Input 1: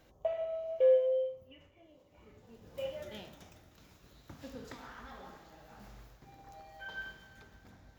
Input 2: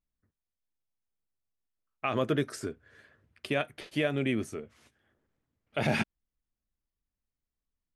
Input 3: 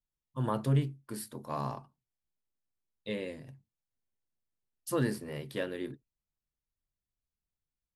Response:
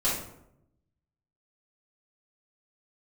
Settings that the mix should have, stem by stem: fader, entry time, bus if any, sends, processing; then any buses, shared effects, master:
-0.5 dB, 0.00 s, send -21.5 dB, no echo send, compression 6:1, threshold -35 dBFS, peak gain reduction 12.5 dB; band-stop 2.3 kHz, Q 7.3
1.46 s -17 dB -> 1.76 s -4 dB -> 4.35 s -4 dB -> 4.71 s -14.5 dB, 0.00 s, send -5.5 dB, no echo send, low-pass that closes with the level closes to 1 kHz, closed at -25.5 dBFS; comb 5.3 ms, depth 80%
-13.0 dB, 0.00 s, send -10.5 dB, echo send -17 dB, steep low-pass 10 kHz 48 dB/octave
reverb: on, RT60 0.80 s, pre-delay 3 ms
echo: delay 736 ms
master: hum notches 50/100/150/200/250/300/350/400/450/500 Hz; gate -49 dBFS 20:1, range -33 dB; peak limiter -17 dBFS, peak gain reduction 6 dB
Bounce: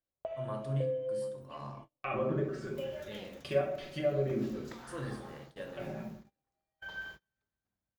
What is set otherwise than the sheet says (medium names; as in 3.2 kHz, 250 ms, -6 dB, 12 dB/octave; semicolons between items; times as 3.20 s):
stem 1: missing band-stop 2.3 kHz, Q 7.3; stem 2 -17.0 dB -> -23.5 dB